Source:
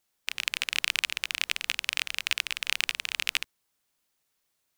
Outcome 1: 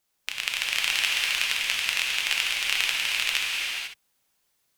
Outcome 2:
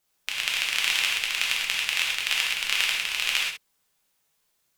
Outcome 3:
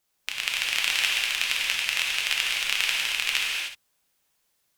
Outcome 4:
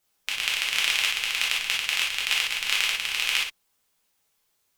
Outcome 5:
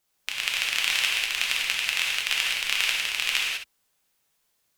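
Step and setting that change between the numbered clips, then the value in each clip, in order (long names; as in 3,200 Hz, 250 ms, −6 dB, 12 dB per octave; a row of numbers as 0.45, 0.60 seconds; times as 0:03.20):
reverb whose tail is shaped and stops, gate: 520, 150, 330, 80, 220 milliseconds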